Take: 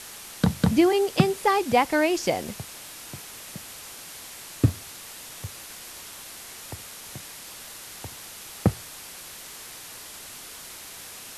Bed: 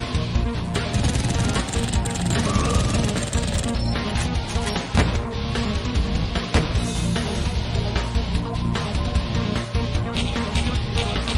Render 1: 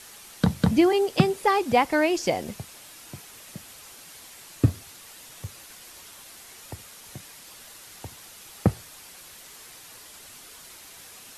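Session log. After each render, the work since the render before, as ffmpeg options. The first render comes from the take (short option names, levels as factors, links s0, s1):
-af "afftdn=nr=6:nf=-42"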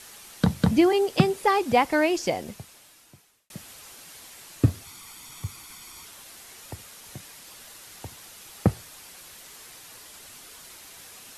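-filter_complex "[0:a]asettb=1/sr,asplit=3[s0][s1][s2];[s0]atrim=end=4.854[s3];[s1]atrim=start=4.85:end=6.05,asetpts=PTS-STARTPTS,afade=t=in:d=0.004:c=qsin,afade=t=out:st=1.196:d=0.004:c=qsin,aecho=1:1:0.9:0.62,atrim=end_sample=52920[s4];[s2]atrim=start=6.046[s5];[s3][s4]acrossfade=d=0.004:c1=hsin:c2=qsin[s6];[s6][s5]acrossfade=d=0.004:c1=qsin:c2=hsin,asplit=2[s7][s8];[s7]atrim=end=3.5,asetpts=PTS-STARTPTS,afade=t=out:st=2.07:d=1.43[s9];[s8]atrim=start=3.5,asetpts=PTS-STARTPTS,afade=t=in:d=0.004:c=hsin[s10];[s9][s10]concat=n=2:v=0:a=1"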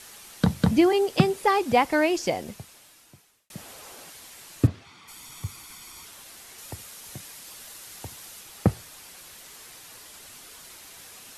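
-filter_complex "[0:a]asettb=1/sr,asplit=3[s0][s1][s2];[s0]atrim=end=3.584[s3];[s1]atrim=start=3.58:end=4.1,asetpts=PTS-STARTPTS,afade=t=in:d=0.004:c=qsin,afade=t=out:st=0.516:d=0.004:c=qsin,equalizer=f=560:w=0.61:g=9[s4];[s2]atrim=start=4.096[s5];[s3][s4]acrossfade=d=0.004:c1=hsin:c2=qsin[s6];[s6][s5]acrossfade=d=0.004:c1=qsin:c2=hsin,asplit=3[s7][s8][s9];[s7]afade=t=out:st=4.66:d=0.02[s10];[s8]highpass=110,lowpass=3400,afade=t=in:st=4.66:d=0.02,afade=t=out:st=5.07:d=0.02[s11];[s9]afade=t=in:st=5.07:d=0.02[s12];[s10][s11][s12]amix=inputs=3:normalize=0,asettb=1/sr,asplit=3[s13][s14][s15];[s13]atrim=end=6.584[s16];[s14]atrim=start=6.58:end=8.41,asetpts=PTS-STARTPTS,afade=t=in:d=0.004:c=qsin,afade=t=out:st=1.826:d=0.004:c=qsin,highshelf=f=4900:g=4[s17];[s15]atrim=start=8.406[s18];[s16][s17]acrossfade=d=0.004:c1=hsin:c2=qsin[s19];[s19][s18]acrossfade=d=0.004:c1=qsin:c2=hsin"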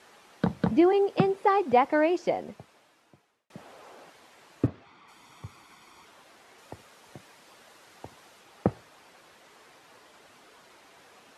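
-af "bandpass=f=590:t=q:w=0.53:csg=0"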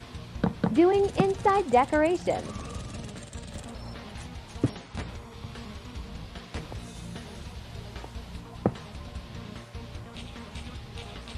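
-filter_complex "[1:a]volume=0.133[s0];[0:a][s0]amix=inputs=2:normalize=0"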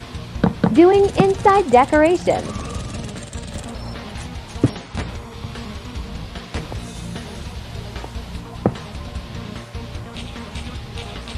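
-af "volume=2.99,alimiter=limit=0.891:level=0:latency=1"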